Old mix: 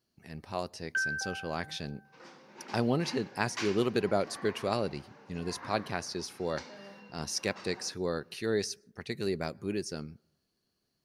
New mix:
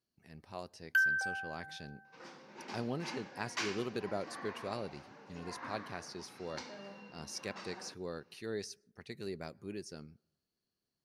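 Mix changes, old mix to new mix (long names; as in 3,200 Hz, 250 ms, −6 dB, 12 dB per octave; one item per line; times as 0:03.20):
speech −9.5 dB
first sound: remove high-frequency loss of the air 350 metres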